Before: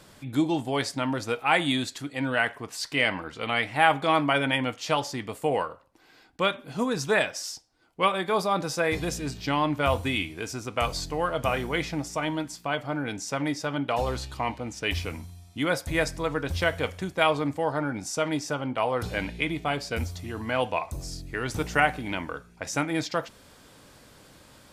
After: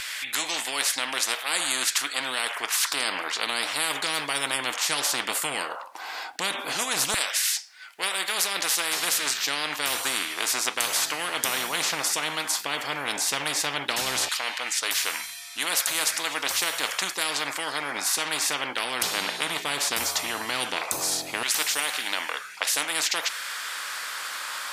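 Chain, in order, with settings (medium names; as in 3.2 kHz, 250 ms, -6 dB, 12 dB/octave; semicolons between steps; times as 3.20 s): LFO high-pass saw down 0.14 Hz 730–2100 Hz; spectrum-flattening compressor 10:1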